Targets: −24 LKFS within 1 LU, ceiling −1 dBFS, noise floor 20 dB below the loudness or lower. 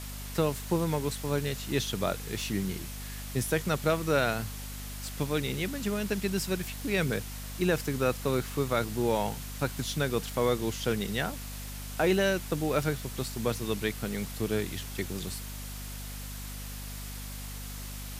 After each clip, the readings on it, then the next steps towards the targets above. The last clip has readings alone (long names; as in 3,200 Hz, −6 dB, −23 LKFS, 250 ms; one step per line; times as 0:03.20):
mains hum 50 Hz; hum harmonics up to 250 Hz; level of the hum −39 dBFS; background noise floor −40 dBFS; target noise floor −52 dBFS; integrated loudness −31.5 LKFS; sample peak −14.5 dBFS; target loudness −24.0 LKFS
→ hum removal 50 Hz, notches 5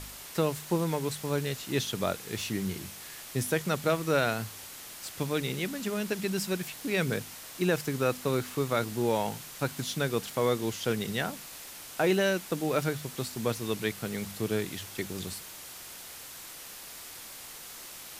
mains hum none found; background noise floor −45 dBFS; target noise floor −51 dBFS
→ broadband denoise 6 dB, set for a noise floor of −45 dBFS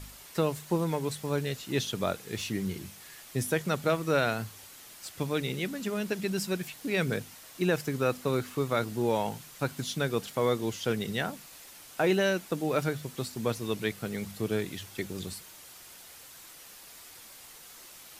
background noise floor −50 dBFS; target noise floor −51 dBFS
→ broadband denoise 6 dB, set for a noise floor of −50 dBFS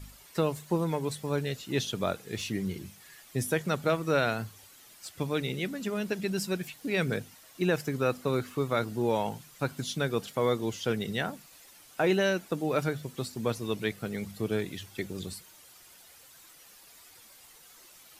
background noise floor −55 dBFS; integrated loudness −31.5 LKFS; sample peak −15.0 dBFS; target loudness −24.0 LKFS
→ level +7.5 dB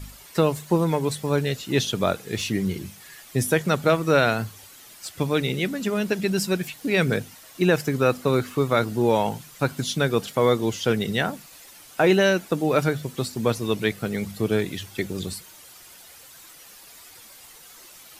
integrated loudness −24.0 LKFS; sample peak −7.5 dBFS; background noise floor −47 dBFS